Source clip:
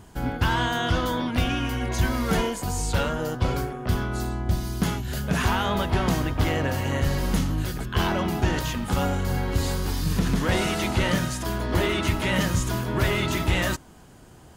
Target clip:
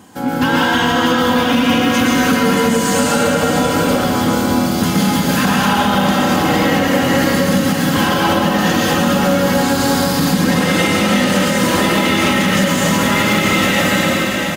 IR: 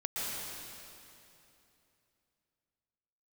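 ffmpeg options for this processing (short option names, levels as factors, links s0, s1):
-filter_complex "[0:a]highpass=f=120:w=0.5412,highpass=f=120:w=1.3066,aecho=1:1:683:0.335[s0];[1:a]atrim=start_sample=2205[s1];[s0][s1]afir=irnorm=-1:irlink=0,asplit=2[s2][s3];[s3]asoftclip=type=hard:threshold=0.1,volume=0.447[s4];[s2][s4]amix=inputs=2:normalize=0,aecho=1:1:3.8:0.64,alimiter=limit=0.282:level=0:latency=1:release=166,volume=2"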